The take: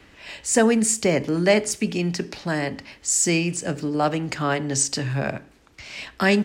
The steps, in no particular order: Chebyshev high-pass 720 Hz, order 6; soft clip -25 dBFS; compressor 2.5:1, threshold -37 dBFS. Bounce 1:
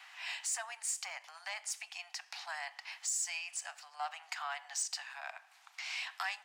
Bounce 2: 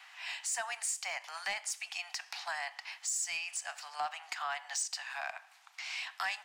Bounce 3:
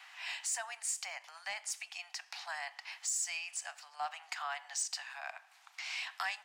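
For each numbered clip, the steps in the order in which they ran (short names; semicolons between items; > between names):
compressor > soft clip > Chebyshev high-pass; Chebyshev high-pass > compressor > soft clip; compressor > Chebyshev high-pass > soft clip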